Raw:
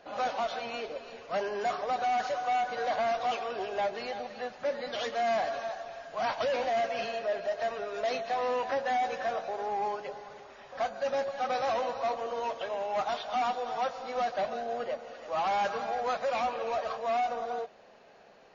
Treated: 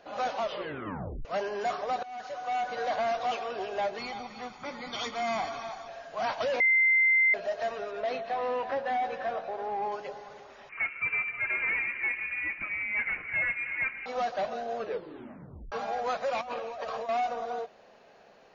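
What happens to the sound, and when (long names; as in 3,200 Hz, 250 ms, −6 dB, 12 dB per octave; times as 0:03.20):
0:00.40: tape stop 0.85 s
0:02.03–0:02.72: fade in, from −19.5 dB
0:03.98–0:05.88: comb filter 0.9 ms, depth 76%
0:06.60–0:07.34: beep over 2,080 Hz −19.5 dBFS
0:07.91–0:09.92: high-frequency loss of the air 180 metres
0:10.69–0:14.06: voice inversion scrambler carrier 2,900 Hz
0:14.76: tape stop 0.96 s
0:16.41–0:17.09: compressor whose output falls as the input rises −37 dBFS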